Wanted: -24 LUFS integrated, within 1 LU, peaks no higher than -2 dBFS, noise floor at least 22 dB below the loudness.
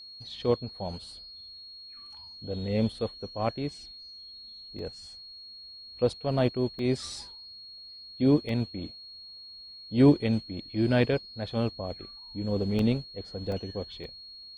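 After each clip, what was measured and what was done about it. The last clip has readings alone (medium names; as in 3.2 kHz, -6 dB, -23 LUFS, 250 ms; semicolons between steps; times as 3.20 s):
dropouts 6; longest dropout 1.8 ms; steady tone 4.3 kHz; tone level -44 dBFS; loudness -29.0 LUFS; peak level -10.0 dBFS; loudness target -24.0 LUFS
-> interpolate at 4.79/6.79/8.49/12.79/13.52/14.04 s, 1.8 ms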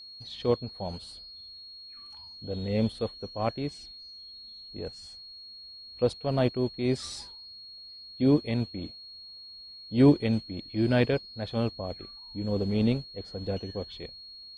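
dropouts 0; steady tone 4.3 kHz; tone level -44 dBFS
-> band-stop 4.3 kHz, Q 30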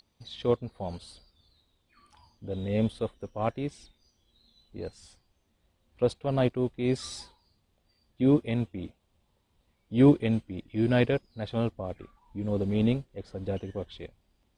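steady tone not found; loudness -29.0 LUFS; peak level -10.0 dBFS; loudness target -24.0 LUFS
-> trim +5 dB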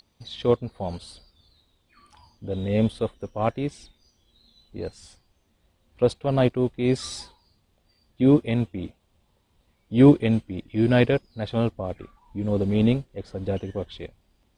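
loudness -24.0 LUFS; peak level -5.0 dBFS; noise floor -68 dBFS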